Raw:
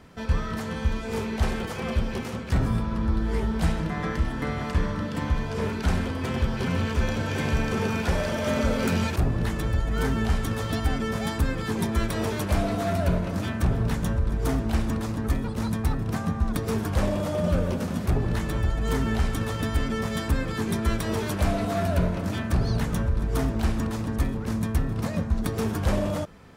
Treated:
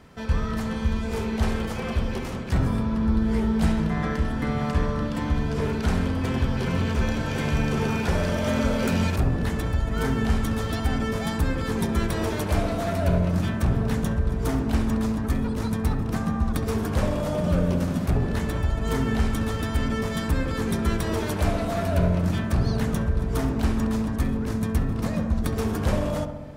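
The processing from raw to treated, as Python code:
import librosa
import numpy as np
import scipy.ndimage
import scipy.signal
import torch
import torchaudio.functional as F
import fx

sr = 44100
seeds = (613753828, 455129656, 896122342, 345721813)

y = fx.echo_filtered(x, sr, ms=68, feedback_pct=76, hz=1600.0, wet_db=-8)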